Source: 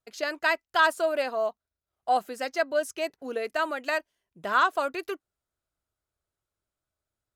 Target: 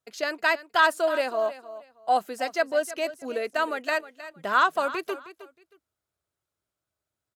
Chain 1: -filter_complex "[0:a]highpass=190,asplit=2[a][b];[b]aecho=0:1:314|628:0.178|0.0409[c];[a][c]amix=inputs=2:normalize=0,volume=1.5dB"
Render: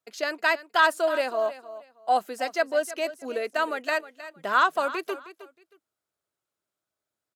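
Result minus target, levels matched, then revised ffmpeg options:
125 Hz band -3.0 dB
-filter_complex "[0:a]highpass=78,asplit=2[a][b];[b]aecho=0:1:314|628:0.178|0.0409[c];[a][c]amix=inputs=2:normalize=0,volume=1.5dB"

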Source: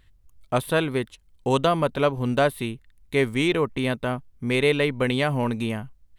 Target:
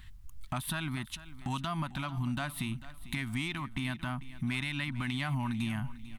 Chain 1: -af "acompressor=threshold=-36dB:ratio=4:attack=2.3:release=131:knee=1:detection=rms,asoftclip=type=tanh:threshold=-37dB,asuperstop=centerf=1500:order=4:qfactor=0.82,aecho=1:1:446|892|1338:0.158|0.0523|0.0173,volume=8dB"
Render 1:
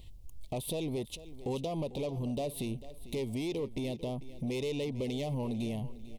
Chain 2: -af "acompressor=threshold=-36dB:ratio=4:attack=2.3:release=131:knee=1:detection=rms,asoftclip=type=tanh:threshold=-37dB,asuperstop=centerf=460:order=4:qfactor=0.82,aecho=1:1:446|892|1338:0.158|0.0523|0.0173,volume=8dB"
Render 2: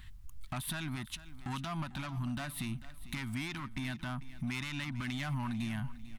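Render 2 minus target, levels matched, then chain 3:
soft clip: distortion +15 dB
-af "acompressor=threshold=-36dB:ratio=4:attack=2.3:release=131:knee=1:detection=rms,asoftclip=type=tanh:threshold=-26dB,asuperstop=centerf=460:order=4:qfactor=0.82,aecho=1:1:446|892|1338:0.158|0.0523|0.0173,volume=8dB"

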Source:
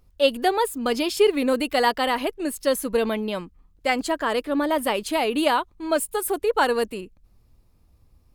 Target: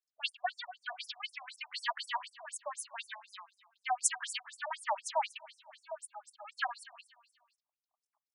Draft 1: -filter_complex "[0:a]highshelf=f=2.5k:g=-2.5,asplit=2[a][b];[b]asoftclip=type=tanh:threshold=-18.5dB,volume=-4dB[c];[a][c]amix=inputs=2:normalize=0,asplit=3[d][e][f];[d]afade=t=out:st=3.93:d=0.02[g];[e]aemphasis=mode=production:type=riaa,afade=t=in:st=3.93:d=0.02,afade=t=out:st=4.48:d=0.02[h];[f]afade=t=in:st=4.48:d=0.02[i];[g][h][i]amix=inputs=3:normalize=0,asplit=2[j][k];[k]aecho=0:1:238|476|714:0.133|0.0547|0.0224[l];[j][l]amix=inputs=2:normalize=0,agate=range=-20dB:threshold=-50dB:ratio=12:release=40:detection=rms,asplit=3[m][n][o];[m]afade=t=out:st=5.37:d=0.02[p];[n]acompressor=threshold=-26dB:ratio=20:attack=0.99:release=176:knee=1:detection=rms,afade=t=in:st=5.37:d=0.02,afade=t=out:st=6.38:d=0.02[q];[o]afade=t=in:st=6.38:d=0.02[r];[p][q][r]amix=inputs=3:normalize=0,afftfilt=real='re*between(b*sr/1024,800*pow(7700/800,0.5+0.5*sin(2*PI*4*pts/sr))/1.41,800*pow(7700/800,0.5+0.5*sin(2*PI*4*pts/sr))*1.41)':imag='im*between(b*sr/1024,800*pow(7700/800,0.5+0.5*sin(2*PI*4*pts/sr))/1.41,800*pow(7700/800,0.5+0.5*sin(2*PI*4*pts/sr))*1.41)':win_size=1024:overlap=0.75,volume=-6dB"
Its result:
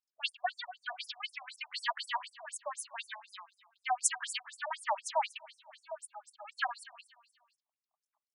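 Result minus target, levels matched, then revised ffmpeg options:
soft clip: distortion -5 dB
-filter_complex "[0:a]highshelf=f=2.5k:g=-2.5,asplit=2[a][b];[b]asoftclip=type=tanh:threshold=-24.5dB,volume=-4dB[c];[a][c]amix=inputs=2:normalize=0,asplit=3[d][e][f];[d]afade=t=out:st=3.93:d=0.02[g];[e]aemphasis=mode=production:type=riaa,afade=t=in:st=3.93:d=0.02,afade=t=out:st=4.48:d=0.02[h];[f]afade=t=in:st=4.48:d=0.02[i];[g][h][i]amix=inputs=3:normalize=0,asplit=2[j][k];[k]aecho=0:1:238|476|714:0.133|0.0547|0.0224[l];[j][l]amix=inputs=2:normalize=0,agate=range=-20dB:threshold=-50dB:ratio=12:release=40:detection=rms,asplit=3[m][n][o];[m]afade=t=out:st=5.37:d=0.02[p];[n]acompressor=threshold=-26dB:ratio=20:attack=0.99:release=176:knee=1:detection=rms,afade=t=in:st=5.37:d=0.02,afade=t=out:st=6.38:d=0.02[q];[o]afade=t=in:st=6.38:d=0.02[r];[p][q][r]amix=inputs=3:normalize=0,afftfilt=real='re*between(b*sr/1024,800*pow(7700/800,0.5+0.5*sin(2*PI*4*pts/sr))/1.41,800*pow(7700/800,0.5+0.5*sin(2*PI*4*pts/sr))*1.41)':imag='im*between(b*sr/1024,800*pow(7700/800,0.5+0.5*sin(2*PI*4*pts/sr))/1.41,800*pow(7700/800,0.5+0.5*sin(2*PI*4*pts/sr))*1.41)':win_size=1024:overlap=0.75,volume=-6dB"

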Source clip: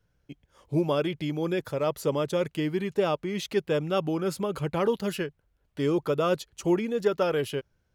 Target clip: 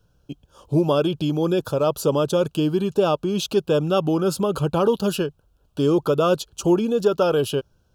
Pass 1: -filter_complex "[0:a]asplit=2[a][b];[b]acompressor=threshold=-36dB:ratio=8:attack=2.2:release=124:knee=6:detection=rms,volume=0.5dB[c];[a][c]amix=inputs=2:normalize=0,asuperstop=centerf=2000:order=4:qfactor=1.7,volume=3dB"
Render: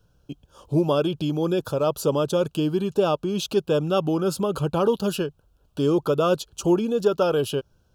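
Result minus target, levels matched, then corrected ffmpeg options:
compressor: peak gain reduction +8.5 dB
-filter_complex "[0:a]asplit=2[a][b];[b]acompressor=threshold=-26.5dB:ratio=8:attack=2.2:release=124:knee=6:detection=rms,volume=0.5dB[c];[a][c]amix=inputs=2:normalize=0,asuperstop=centerf=2000:order=4:qfactor=1.7,volume=3dB"

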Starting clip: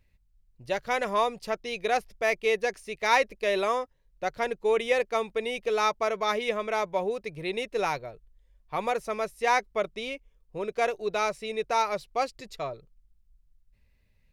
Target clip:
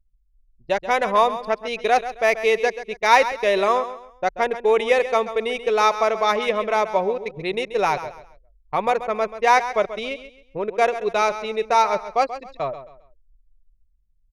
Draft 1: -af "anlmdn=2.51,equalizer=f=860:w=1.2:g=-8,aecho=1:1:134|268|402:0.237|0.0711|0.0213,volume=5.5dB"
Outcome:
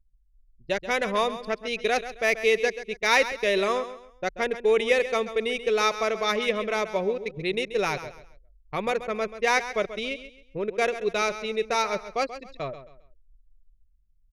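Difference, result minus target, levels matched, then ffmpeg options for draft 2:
1000 Hz band -4.5 dB
-af "anlmdn=2.51,equalizer=f=860:w=1.2:g=3.5,aecho=1:1:134|268|402:0.237|0.0711|0.0213,volume=5.5dB"

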